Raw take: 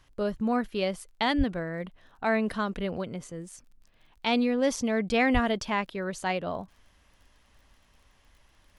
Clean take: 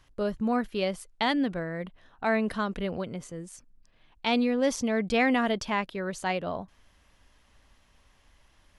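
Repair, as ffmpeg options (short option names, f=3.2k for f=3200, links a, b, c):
-filter_complex "[0:a]adeclick=t=4,asplit=3[a][b][c];[a]afade=t=out:st=1.37:d=0.02[d];[b]highpass=f=140:w=0.5412,highpass=f=140:w=1.3066,afade=t=in:st=1.37:d=0.02,afade=t=out:st=1.49:d=0.02[e];[c]afade=t=in:st=1.49:d=0.02[f];[d][e][f]amix=inputs=3:normalize=0,asplit=3[g][h][i];[g]afade=t=out:st=5.33:d=0.02[j];[h]highpass=f=140:w=0.5412,highpass=f=140:w=1.3066,afade=t=in:st=5.33:d=0.02,afade=t=out:st=5.45:d=0.02[k];[i]afade=t=in:st=5.45:d=0.02[l];[j][k][l]amix=inputs=3:normalize=0"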